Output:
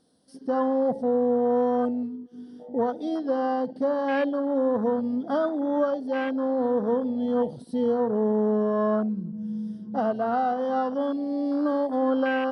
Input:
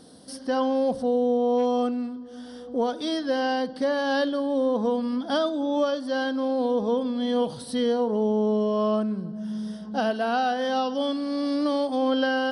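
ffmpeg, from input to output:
-af "afwtdn=0.0398"

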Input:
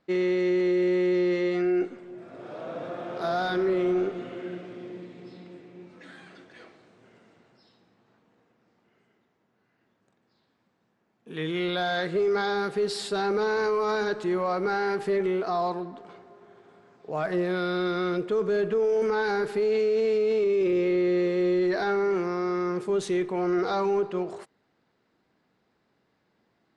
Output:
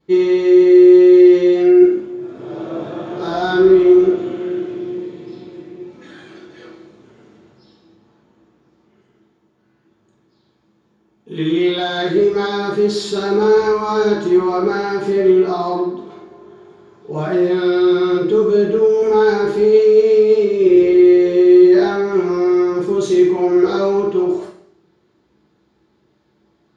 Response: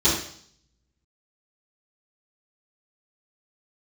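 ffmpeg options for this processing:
-filter_complex "[1:a]atrim=start_sample=2205[a];[0:a][a]afir=irnorm=-1:irlink=0,volume=-9.5dB"

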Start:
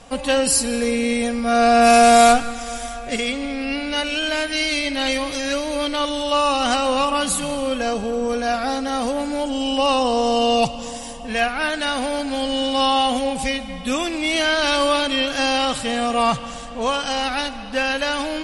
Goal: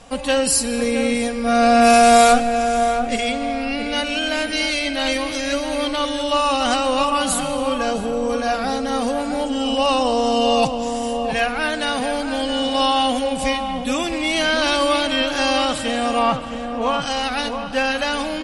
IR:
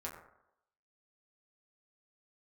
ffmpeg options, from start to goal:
-filter_complex "[0:a]asettb=1/sr,asplit=3[a][b][c];[a]atrim=end=16.194[d];[b]atrim=start=16.19:end=17.02,asetpts=PTS-STARTPTS,afade=t=in:d=0.004:c=qsin,afade=t=out:st=0.826:d=0.004:c=qsin,bass=f=250:g=-1,treble=f=4k:g=-11[e];[c]atrim=start=17.016[f];[d][e]acrossfade=d=0.004:c1=hsin:c2=qsin[g];[g][f]acrossfade=d=0.004:c1=qsin:c2=hsin,asplit=2[h][i];[i]adelay=668,lowpass=f=1.3k:p=1,volume=-6dB,asplit=2[j][k];[k]adelay=668,lowpass=f=1.3k:p=1,volume=0.44,asplit=2[l][m];[m]adelay=668,lowpass=f=1.3k:p=1,volume=0.44,asplit=2[n][o];[o]adelay=668,lowpass=f=1.3k:p=1,volume=0.44,asplit=2[p][q];[q]adelay=668,lowpass=f=1.3k:p=1,volume=0.44[r];[h][j][l][n][p][r]amix=inputs=6:normalize=0"

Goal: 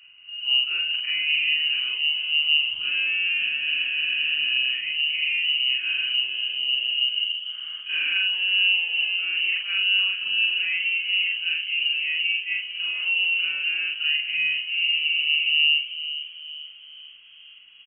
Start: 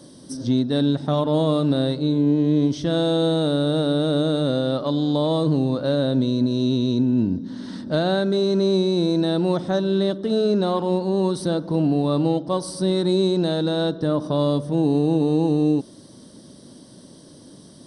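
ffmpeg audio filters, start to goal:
-filter_complex "[0:a]afftfilt=real='re':imag='-im':win_size=4096:overlap=0.75,lowpass=f=2.6k:t=q:w=0.5098,lowpass=f=2.6k:t=q:w=0.6013,lowpass=f=2.6k:t=q:w=0.9,lowpass=f=2.6k:t=q:w=2.563,afreqshift=-3100,asplit=6[a][b][c][d][e][f];[b]adelay=443,afreqshift=77,volume=-12dB[g];[c]adelay=886,afreqshift=154,volume=-18.9dB[h];[d]adelay=1329,afreqshift=231,volume=-25.9dB[i];[e]adelay=1772,afreqshift=308,volume=-32.8dB[j];[f]adelay=2215,afreqshift=385,volume=-39.7dB[k];[a][g][h][i][j][k]amix=inputs=6:normalize=0"

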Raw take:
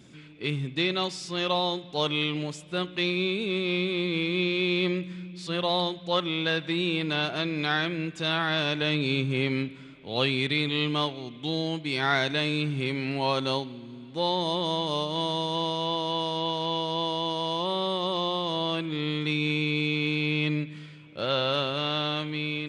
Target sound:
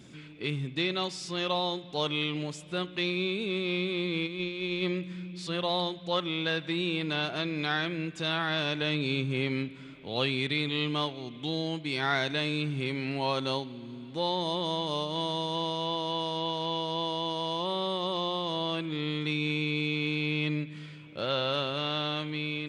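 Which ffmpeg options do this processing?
-filter_complex "[0:a]asplit=3[a][b][c];[a]afade=t=out:st=4.26:d=0.02[d];[b]agate=range=-8dB:threshold=-24dB:ratio=16:detection=peak,afade=t=in:st=4.26:d=0.02,afade=t=out:st=4.81:d=0.02[e];[c]afade=t=in:st=4.81:d=0.02[f];[d][e][f]amix=inputs=3:normalize=0,asplit=2[g][h];[h]acompressor=threshold=-39dB:ratio=6,volume=-1dB[i];[g][i]amix=inputs=2:normalize=0,volume=-4.5dB"

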